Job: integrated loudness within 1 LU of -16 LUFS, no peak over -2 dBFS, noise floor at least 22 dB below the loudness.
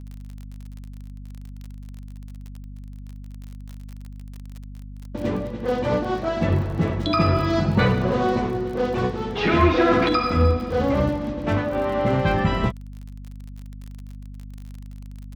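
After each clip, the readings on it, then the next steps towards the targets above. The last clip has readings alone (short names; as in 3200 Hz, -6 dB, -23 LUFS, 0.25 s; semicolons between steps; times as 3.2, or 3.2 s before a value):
ticks 37/s; hum 50 Hz; harmonics up to 250 Hz; hum level -34 dBFS; loudness -22.0 LUFS; peak -6.0 dBFS; loudness target -16.0 LUFS
-> de-click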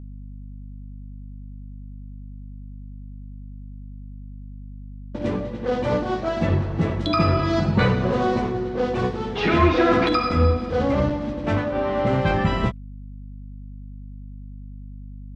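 ticks 0/s; hum 50 Hz; harmonics up to 250 Hz; hum level -34 dBFS
-> de-hum 50 Hz, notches 5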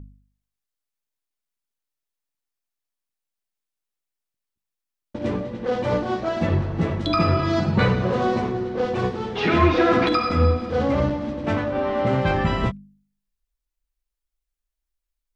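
hum none; loudness -22.0 LUFS; peak -5.5 dBFS; loudness target -16.0 LUFS
-> gain +6 dB; limiter -2 dBFS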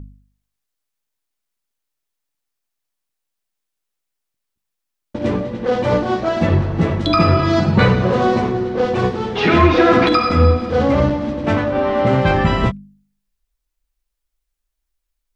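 loudness -16.5 LUFS; peak -2.0 dBFS; noise floor -79 dBFS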